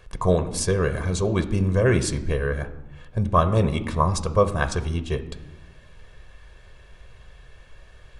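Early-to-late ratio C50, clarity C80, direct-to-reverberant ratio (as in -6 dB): 13.5 dB, 15.5 dB, 10.0 dB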